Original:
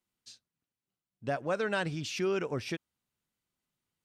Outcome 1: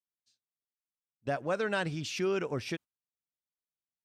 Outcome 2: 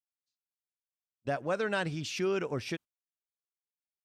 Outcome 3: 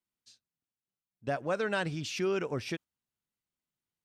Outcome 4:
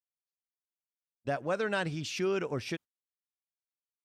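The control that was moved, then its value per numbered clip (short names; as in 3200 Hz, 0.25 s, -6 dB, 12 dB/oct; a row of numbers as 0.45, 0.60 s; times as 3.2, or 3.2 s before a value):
gate, range: -21, -38, -7, -53 dB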